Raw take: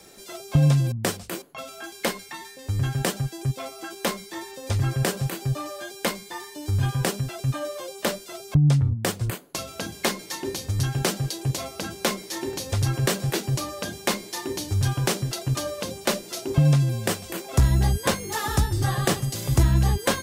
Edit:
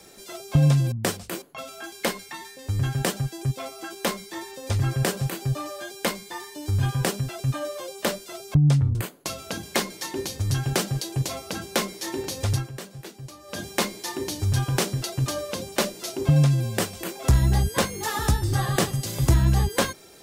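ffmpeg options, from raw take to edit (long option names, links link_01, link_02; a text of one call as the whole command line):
ffmpeg -i in.wav -filter_complex "[0:a]asplit=4[link_01][link_02][link_03][link_04];[link_01]atrim=end=8.952[link_05];[link_02]atrim=start=9.238:end=13.04,asetpts=PTS-STARTPTS,afade=type=out:start_time=3.592:duration=0.21:curve=qua:silence=0.188365[link_06];[link_03]atrim=start=13.04:end=13.67,asetpts=PTS-STARTPTS,volume=-14.5dB[link_07];[link_04]atrim=start=13.67,asetpts=PTS-STARTPTS,afade=type=in:duration=0.21:curve=qua:silence=0.188365[link_08];[link_06][link_07][link_08]concat=n=3:v=0:a=1[link_09];[link_05][link_09]acrossfade=duration=0.004:curve1=hsin:curve2=hsin" out.wav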